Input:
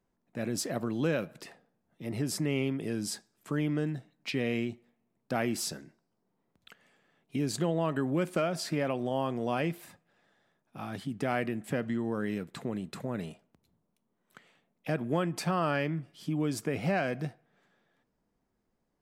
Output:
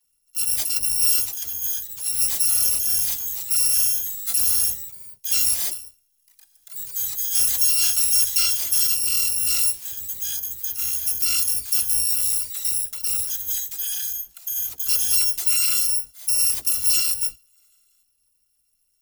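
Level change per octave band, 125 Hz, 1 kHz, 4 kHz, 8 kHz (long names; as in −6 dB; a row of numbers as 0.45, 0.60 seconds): below −10 dB, −10.0 dB, +17.5 dB, +24.0 dB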